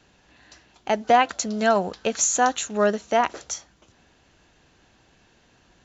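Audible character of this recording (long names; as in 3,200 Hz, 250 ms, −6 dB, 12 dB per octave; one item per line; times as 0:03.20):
background noise floor −60 dBFS
spectral slope −2.5 dB per octave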